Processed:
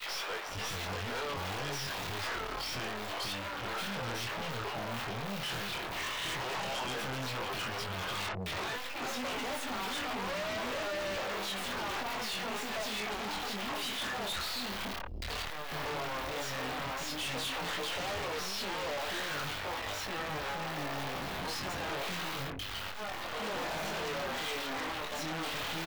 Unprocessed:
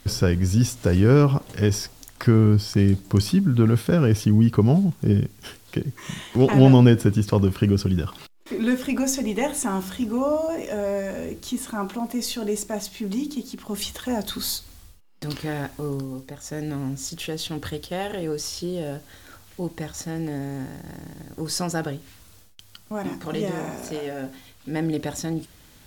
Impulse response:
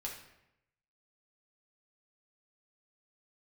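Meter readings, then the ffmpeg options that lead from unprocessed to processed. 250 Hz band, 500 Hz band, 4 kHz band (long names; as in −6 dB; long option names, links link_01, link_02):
−21.0 dB, −13.0 dB, −1.0 dB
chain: -filter_complex "[0:a]aeval=exprs='val(0)+0.5*0.0891*sgn(val(0))':channel_layout=same,acrossover=split=630|3300[link_01][link_02][link_03];[link_01]acompressor=threshold=-24dB:ratio=12[link_04];[link_02]alimiter=level_in=1dB:limit=-24dB:level=0:latency=1,volume=-1dB[link_05];[link_04][link_05][link_03]amix=inputs=3:normalize=0,acrossover=split=370|1900[link_06][link_07][link_08];[link_07]adelay=60[link_09];[link_06]adelay=490[link_10];[link_10][link_09][link_08]amix=inputs=3:normalize=0,aeval=exprs='(tanh(31.6*val(0)+0.45)-tanh(0.45))/31.6':channel_layout=same,aemphasis=mode=production:type=50fm,acrossover=split=3500[link_11][link_12];[link_12]acompressor=threshold=-35dB:ratio=4:attack=1:release=60[link_13];[link_11][link_13]amix=inputs=2:normalize=0,flanger=delay=20:depth=5.2:speed=0.1,agate=range=-33dB:threshold=-36dB:ratio=3:detection=peak,acrossover=split=510 4800:gain=0.2 1 0.126[link_14][link_15][link_16];[link_14][link_15][link_16]amix=inputs=3:normalize=0,aeval=exprs='0.0237*sin(PI/2*2*val(0)/0.0237)':channel_layout=same"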